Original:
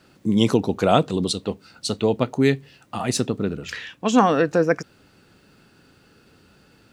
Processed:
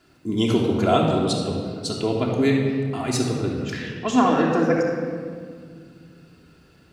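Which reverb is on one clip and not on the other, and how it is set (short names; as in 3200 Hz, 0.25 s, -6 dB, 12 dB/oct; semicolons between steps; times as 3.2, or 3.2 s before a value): shoebox room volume 3800 m³, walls mixed, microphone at 3.1 m; gain -5 dB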